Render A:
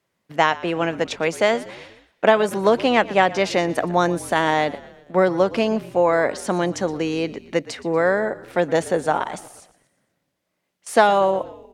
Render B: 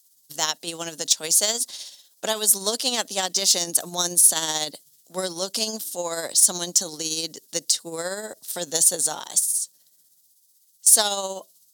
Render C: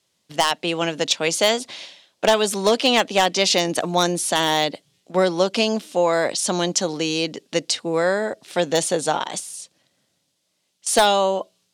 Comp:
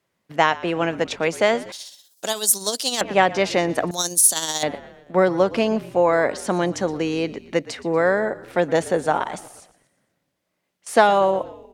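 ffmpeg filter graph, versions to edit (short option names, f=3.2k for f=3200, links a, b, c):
-filter_complex "[1:a]asplit=2[a][b];[0:a]asplit=3[c][d][e];[c]atrim=end=1.722[f];[a]atrim=start=1.718:end=3.012[g];[d]atrim=start=3.008:end=3.912[h];[b]atrim=start=3.908:end=4.632[i];[e]atrim=start=4.628[j];[f][g]acrossfade=d=0.004:c1=hsin:c2=hsin[k];[k][h]acrossfade=d=0.004:c1=hsin:c2=hsin[l];[l][i]acrossfade=d=0.004:c1=hsin:c2=hsin[m];[m][j]acrossfade=d=0.004:c1=hsin:c2=hsin"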